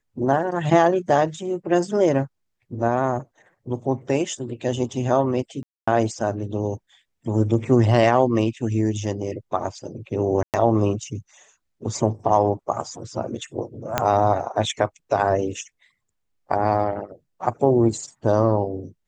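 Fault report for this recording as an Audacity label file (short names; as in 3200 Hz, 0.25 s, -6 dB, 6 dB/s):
5.630000	5.880000	gap 0.245 s
10.430000	10.540000	gap 0.108 s
13.980000	13.980000	pop -4 dBFS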